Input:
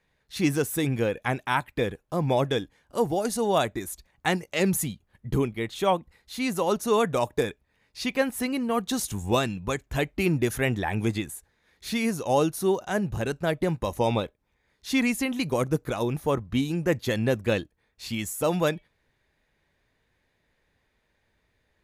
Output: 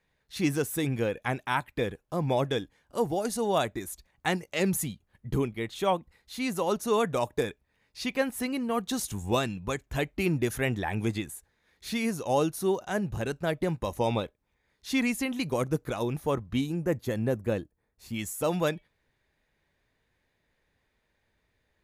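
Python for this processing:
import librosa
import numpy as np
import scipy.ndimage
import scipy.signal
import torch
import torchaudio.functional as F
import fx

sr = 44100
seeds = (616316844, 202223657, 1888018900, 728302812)

y = fx.peak_eq(x, sr, hz=3400.0, db=fx.line((16.65, -8.0), (18.14, -14.0)), octaves=2.1, at=(16.65, 18.14), fade=0.02)
y = y * 10.0 ** (-3.0 / 20.0)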